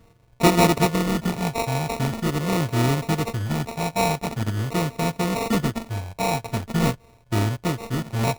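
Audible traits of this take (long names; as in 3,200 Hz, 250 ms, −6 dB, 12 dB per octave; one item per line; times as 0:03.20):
a buzz of ramps at a fixed pitch in blocks of 64 samples
phaser sweep stages 6, 0.44 Hz, lowest notch 380–1,600 Hz
aliases and images of a low sample rate 1,600 Hz, jitter 0%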